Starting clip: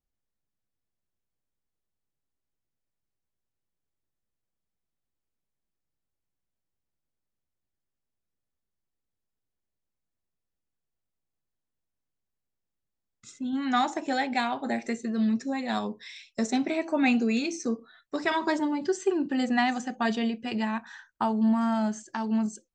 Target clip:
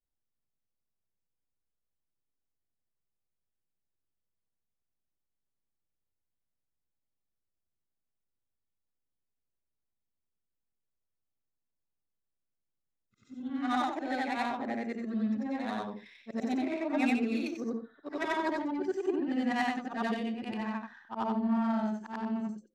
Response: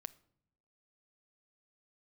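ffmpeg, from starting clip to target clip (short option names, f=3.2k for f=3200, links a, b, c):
-af "afftfilt=real='re':imag='-im':win_size=8192:overlap=0.75,adynamicsmooth=sensitivity=5.5:basefreq=2.1k"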